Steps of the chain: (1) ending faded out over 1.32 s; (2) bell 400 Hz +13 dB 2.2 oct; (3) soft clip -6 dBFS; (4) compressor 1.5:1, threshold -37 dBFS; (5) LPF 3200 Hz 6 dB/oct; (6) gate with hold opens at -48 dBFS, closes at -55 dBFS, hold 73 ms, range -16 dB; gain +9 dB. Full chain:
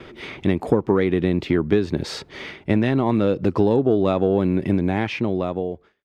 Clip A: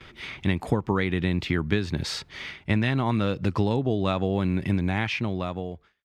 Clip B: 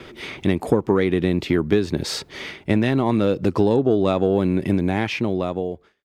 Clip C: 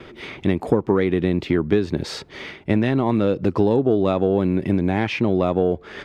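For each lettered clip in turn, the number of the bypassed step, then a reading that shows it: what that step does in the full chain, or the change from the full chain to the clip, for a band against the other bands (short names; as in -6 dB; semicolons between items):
2, 500 Hz band -8.0 dB; 5, 4 kHz band +3.5 dB; 1, momentary loudness spread change -2 LU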